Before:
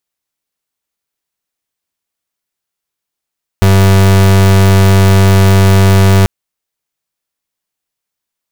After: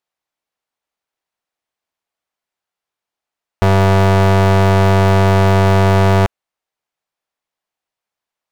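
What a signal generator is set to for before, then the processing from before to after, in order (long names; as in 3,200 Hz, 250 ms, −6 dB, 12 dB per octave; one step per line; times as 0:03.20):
pulse wave 96.6 Hz, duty 36% −6 dBFS 2.64 s
mid-hump overdrive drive 1 dB, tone 2,600 Hz, clips at −5.5 dBFS
parametric band 720 Hz +5.5 dB 1.2 octaves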